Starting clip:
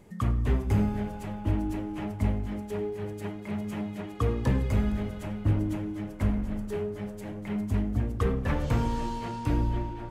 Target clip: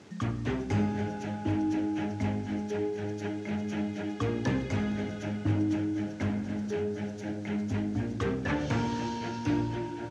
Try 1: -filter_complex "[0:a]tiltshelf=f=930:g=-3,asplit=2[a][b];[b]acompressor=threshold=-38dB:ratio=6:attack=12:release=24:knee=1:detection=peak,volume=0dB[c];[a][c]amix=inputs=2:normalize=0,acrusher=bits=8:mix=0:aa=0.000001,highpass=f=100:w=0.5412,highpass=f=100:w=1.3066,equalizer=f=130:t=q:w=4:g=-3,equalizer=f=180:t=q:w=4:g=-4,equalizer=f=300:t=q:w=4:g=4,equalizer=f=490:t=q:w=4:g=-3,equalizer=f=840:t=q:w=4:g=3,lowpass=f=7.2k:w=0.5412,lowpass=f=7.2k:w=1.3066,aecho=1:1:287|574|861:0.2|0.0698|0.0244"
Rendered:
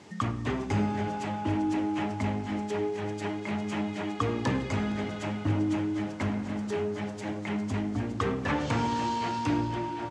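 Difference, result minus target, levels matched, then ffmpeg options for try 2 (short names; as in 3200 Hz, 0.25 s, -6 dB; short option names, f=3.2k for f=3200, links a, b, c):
4000 Hz band +2.5 dB
-filter_complex "[0:a]tiltshelf=f=930:g=-3,asplit=2[a][b];[b]acompressor=threshold=-38dB:ratio=6:attack=12:release=24:knee=1:detection=peak,asuperstop=centerf=3100:order=20:qfactor=0.88[c];[a][c]amix=inputs=2:normalize=0,acrusher=bits=8:mix=0:aa=0.000001,highpass=f=100:w=0.5412,highpass=f=100:w=1.3066,equalizer=f=130:t=q:w=4:g=-3,equalizer=f=180:t=q:w=4:g=-4,equalizer=f=300:t=q:w=4:g=4,equalizer=f=490:t=q:w=4:g=-3,equalizer=f=840:t=q:w=4:g=3,lowpass=f=7.2k:w=0.5412,lowpass=f=7.2k:w=1.3066,aecho=1:1:287|574|861:0.2|0.0698|0.0244"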